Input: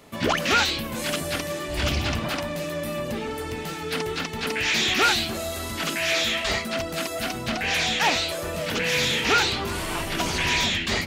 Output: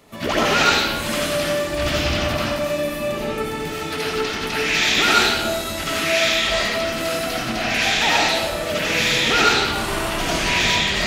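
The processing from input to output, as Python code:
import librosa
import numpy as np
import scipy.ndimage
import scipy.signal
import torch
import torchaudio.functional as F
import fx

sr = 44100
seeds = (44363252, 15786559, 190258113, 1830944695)

y = fx.rev_freeverb(x, sr, rt60_s=1.1, hf_ratio=0.8, predelay_ms=45, drr_db=-6.0)
y = y * librosa.db_to_amplitude(-1.5)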